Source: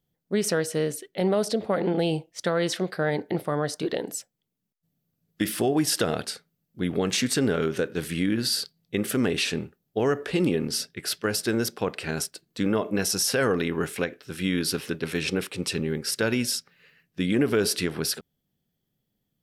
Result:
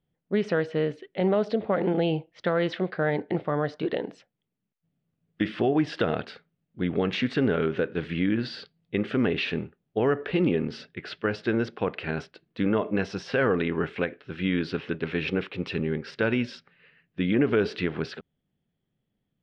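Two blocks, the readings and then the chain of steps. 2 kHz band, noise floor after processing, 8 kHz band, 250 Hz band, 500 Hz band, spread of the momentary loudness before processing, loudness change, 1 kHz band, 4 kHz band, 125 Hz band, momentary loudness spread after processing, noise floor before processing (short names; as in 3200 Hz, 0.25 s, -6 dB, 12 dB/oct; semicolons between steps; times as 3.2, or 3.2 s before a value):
0.0 dB, -81 dBFS, under -25 dB, 0.0 dB, 0.0 dB, 8 LU, -1.0 dB, 0.0 dB, -8.0 dB, 0.0 dB, 9 LU, -79 dBFS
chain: LPF 3200 Hz 24 dB/oct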